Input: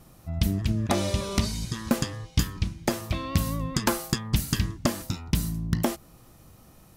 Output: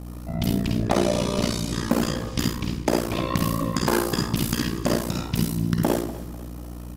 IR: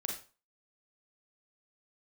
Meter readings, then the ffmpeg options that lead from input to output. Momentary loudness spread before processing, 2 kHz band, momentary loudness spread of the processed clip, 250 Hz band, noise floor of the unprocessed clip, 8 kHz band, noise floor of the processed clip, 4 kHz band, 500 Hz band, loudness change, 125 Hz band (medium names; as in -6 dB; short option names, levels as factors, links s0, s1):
5 LU, +3.5 dB, 8 LU, +5.5 dB, -54 dBFS, +1.5 dB, -36 dBFS, +2.5 dB, +7.0 dB, +3.5 dB, +1.5 dB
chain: -filter_complex "[0:a]equalizer=f=61:w=1.4:g=-13,acrossover=split=530|5000[s0][s1][s2];[s2]asoftclip=type=tanh:threshold=0.0668[s3];[s0][s1][s3]amix=inputs=3:normalize=0[s4];[1:a]atrim=start_sample=2205,asetrate=36162,aresample=44100[s5];[s4][s5]afir=irnorm=-1:irlink=0,tremolo=f=59:d=0.974,asplit=2[s6][s7];[s7]acompressor=threshold=0.0178:ratio=6,volume=1.26[s8];[s6][s8]amix=inputs=2:normalize=0,aeval=exprs='val(0)+0.0141*(sin(2*PI*60*n/s)+sin(2*PI*2*60*n/s)/2+sin(2*PI*3*60*n/s)/3+sin(2*PI*4*60*n/s)/4+sin(2*PI*5*60*n/s)/5)':c=same,equalizer=f=490:w=0.52:g=5,aecho=1:1:247|494|741|988:0.133|0.064|0.0307|0.0147,acontrast=76,volume=0.531"